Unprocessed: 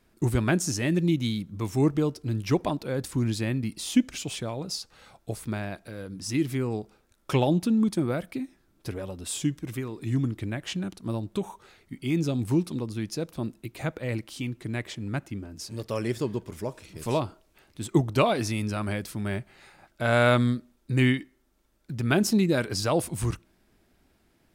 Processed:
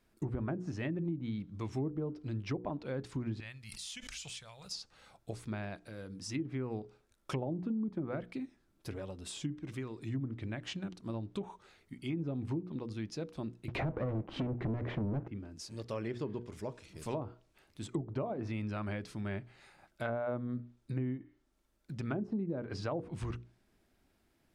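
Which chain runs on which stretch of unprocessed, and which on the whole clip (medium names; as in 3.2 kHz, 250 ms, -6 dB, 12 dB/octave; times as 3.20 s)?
3.40–4.71 s: amplifier tone stack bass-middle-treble 10-0-10 + swell ahead of each attack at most 39 dB/s
13.68–15.28 s: tone controls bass +2 dB, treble -13 dB + waveshaping leveller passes 5
whole clip: hum notches 60/120/180/240/300/360/420/480 Hz; low-pass that closes with the level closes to 740 Hz, closed at -20.5 dBFS; compression 6:1, threshold -25 dBFS; trim -7 dB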